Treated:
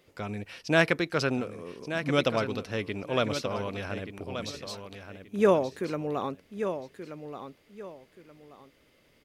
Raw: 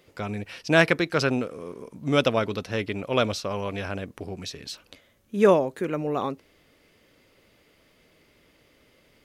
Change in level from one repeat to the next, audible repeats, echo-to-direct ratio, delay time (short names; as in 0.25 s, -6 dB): -11.5 dB, 2, -9.0 dB, 1.179 s